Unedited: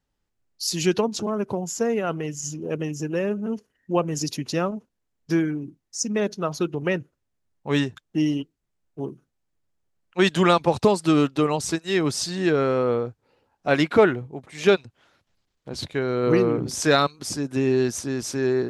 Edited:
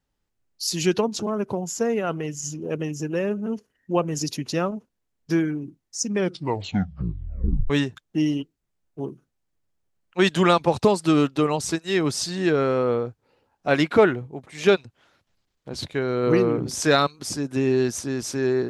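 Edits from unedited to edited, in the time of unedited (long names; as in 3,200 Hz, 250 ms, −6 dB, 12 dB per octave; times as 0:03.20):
0:06.08: tape stop 1.62 s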